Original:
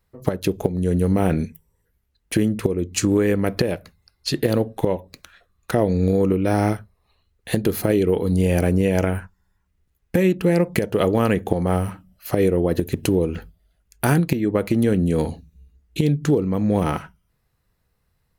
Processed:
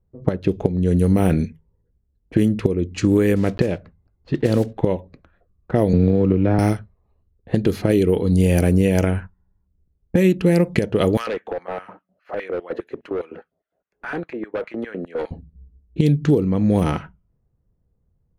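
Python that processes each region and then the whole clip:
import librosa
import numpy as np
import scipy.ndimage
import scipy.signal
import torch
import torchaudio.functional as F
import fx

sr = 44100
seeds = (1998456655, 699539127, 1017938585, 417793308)

y = fx.chain(x, sr, fx.block_float(bits=5),
    fx.high_shelf(hz=3700.0, db=-7.0), at=(3.36, 4.73))
y = fx.chain(y, sr, fx.law_mismatch(coded='A'),
    fx.air_absorb(metres=320.0),
    fx.band_squash(depth_pct=100), at=(5.93, 6.59))
y = fx.chain(y, sr, fx.filter_lfo_highpass(shape='square', hz=4.9, low_hz=520.0, high_hz=1600.0, q=1.3),
    fx.overload_stage(gain_db=21.0),
    fx.band_squash(depth_pct=40), at=(11.17, 15.31))
y = fx.env_lowpass(y, sr, base_hz=570.0, full_db=-14.0)
y = fx.peak_eq(y, sr, hz=1000.0, db=-5.0, octaves=2.4)
y = y * 10.0 ** (3.5 / 20.0)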